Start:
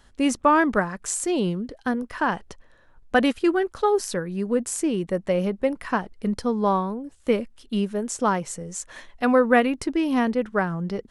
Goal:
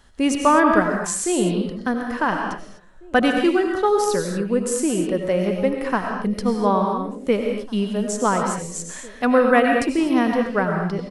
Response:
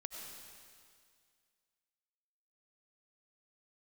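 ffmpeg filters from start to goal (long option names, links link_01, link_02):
-filter_complex "[0:a]asplit=2[link_01][link_02];[link_02]adelay=1749,volume=-22dB,highshelf=frequency=4000:gain=-39.4[link_03];[link_01][link_03]amix=inputs=2:normalize=0[link_04];[1:a]atrim=start_sample=2205,afade=type=out:start_time=0.31:duration=0.01,atrim=end_sample=14112[link_05];[link_04][link_05]afir=irnorm=-1:irlink=0,volume=6.5dB"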